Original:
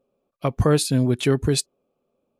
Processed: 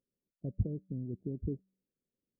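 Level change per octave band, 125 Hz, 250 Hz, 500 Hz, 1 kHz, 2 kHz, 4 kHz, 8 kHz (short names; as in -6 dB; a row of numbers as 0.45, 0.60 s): -15.0 dB, -17.0 dB, -23.0 dB, under -40 dB, under -40 dB, under -40 dB, under -40 dB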